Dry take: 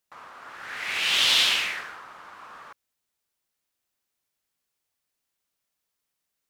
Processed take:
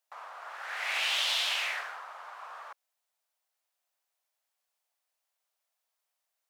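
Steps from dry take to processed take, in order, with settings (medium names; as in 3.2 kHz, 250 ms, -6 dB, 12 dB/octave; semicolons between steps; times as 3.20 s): compression 6:1, threshold -24 dBFS, peak gain reduction 7.5 dB; ladder high-pass 560 Hz, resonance 45%; trim +6 dB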